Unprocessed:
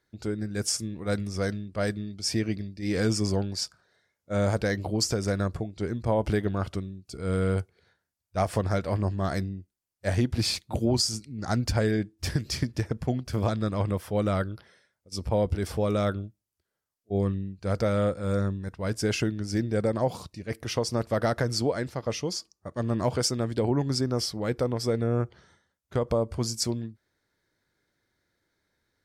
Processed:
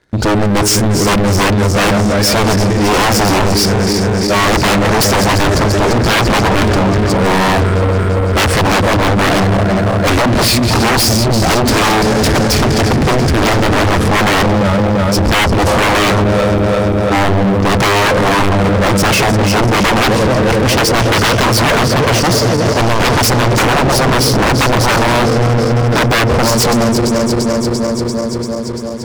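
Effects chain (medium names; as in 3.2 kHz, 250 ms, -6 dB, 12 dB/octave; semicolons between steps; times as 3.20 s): backward echo that repeats 171 ms, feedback 83%, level -12 dB; steep low-pass 11 kHz; treble shelf 3.2 kHz -9.5 dB; sine folder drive 19 dB, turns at -11 dBFS; waveshaping leveller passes 3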